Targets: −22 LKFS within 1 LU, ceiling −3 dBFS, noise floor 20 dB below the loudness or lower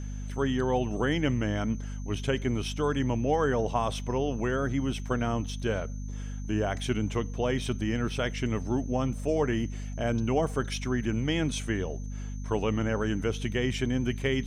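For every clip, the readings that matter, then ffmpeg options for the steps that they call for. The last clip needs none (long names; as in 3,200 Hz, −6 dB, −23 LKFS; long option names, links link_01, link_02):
mains hum 50 Hz; hum harmonics up to 250 Hz; level of the hum −33 dBFS; interfering tone 6,200 Hz; level of the tone −53 dBFS; integrated loudness −29.5 LKFS; sample peak −13.5 dBFS; target loudness −22.0 LKFS
→ -af "bandreject=frequency=50:width_type=h:width=6,bandreject=frequency=100:width_type=h:width=6,bandreject=frequency=150:width_type=h:width=6,bandreject=frequency=200:width_type=h:width=6,bandreject=frequency=250:width_type=h:width=6"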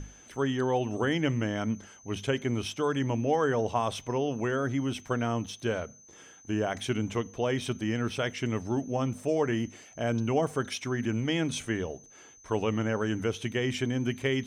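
mains hum none found; interfering tone 6,200 Hz; level of the tone −53 dBFS
→ -af "bandreject=frequency=6200:width=30"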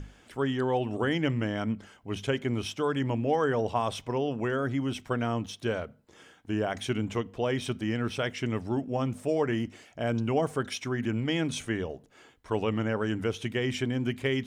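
interfering tone none found; integrated loudness −30.5 LKFS; sample peak −14.0 dBFS; target loudness −22.0 LKFS
→ -af "volume=8.5dB"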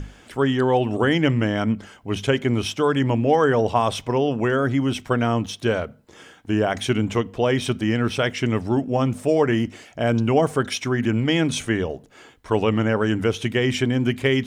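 integrated loudness −22.0 LKFS; sample peak −5.5 dBFS; background noise floor −49 dBFS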